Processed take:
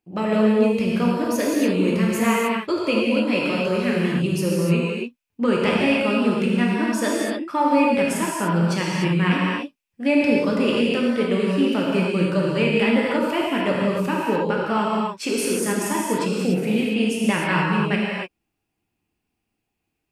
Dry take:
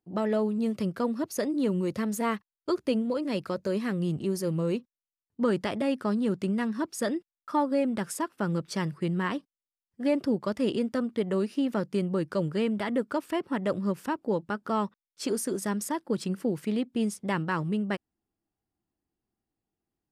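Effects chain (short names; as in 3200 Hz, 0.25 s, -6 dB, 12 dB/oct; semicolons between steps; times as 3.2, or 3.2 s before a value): bell 2500 Hz +13.5 dB 0.43 oct; non-linear reverb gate 0.32 s flat, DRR -4.5 dB; gain +2.5 dB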